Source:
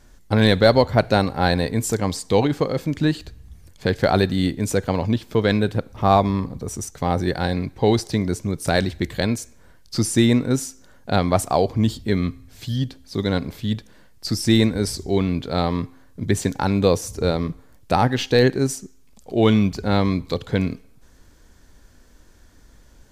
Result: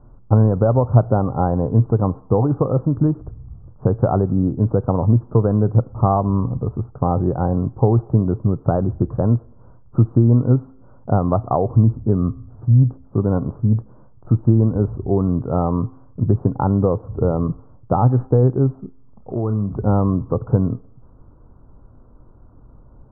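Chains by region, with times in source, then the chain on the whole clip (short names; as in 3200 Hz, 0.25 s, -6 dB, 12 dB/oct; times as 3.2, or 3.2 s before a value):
18.75–19.78 doubler 30 ms -11.5 dB + compressor 8:1, threshold -24 dBFS
whole clip: compressor 5:1, threshold -18 dBFS; steep low-pass 1300 Hz 72 dB/oct; bell 120 Hz +10.5 dB 0.48 oct; gain +4 dB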